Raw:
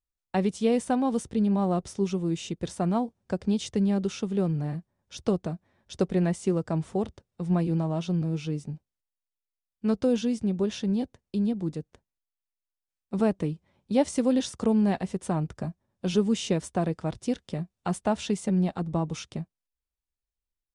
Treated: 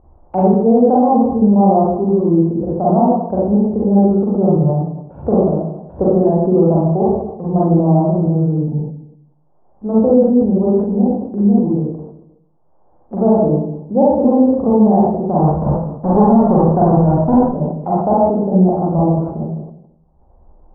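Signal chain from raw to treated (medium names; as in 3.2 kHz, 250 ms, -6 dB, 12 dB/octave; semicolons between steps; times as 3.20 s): 15.39–17.45 s: square wave that keeps the level; steep low-pass 840 Hz 36 dB/octave; bass shelf 480 Hz -12 dB; upward compressor, threshold -42 dBFS; reverberation RT60 0.85 s, pre-delay 35 ms, DRR -7 dB; loudness maximiser +15.5 dB; decay stretcher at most 84 dB/s; trim -1.5 dB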